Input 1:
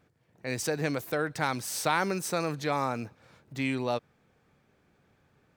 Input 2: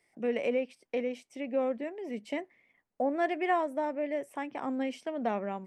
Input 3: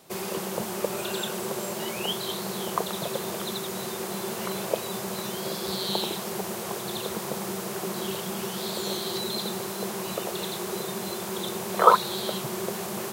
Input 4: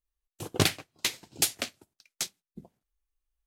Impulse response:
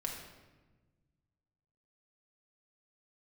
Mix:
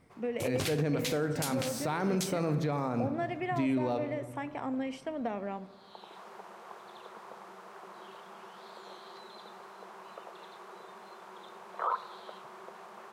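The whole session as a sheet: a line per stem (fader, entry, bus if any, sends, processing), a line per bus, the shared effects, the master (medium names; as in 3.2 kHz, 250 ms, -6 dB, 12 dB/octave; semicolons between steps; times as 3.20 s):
-4.5 dB, 0.00 s, send -3.5 dB, tilt shelf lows +6.5 dB, about 870 Hz
-2.5 dB, 0.00 s, send -11 dB, compression, threshold -30 dBFS, peak gain reduction 8 dB
-10.0 dB, 0.00 s, send -14 dB, band-pass filter 1.1 kHz, Q 1.4; vibrato 2.1 Hz 21 cents; auto duck -23 dB, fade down 0.35 s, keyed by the first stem
0.0 dB, 0.00 s, send -20 dB, none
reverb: on, RT60 1.3 s, pre-delay 4 ms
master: peak limiter -21.5 dBFS, peak gain reduction 15 dB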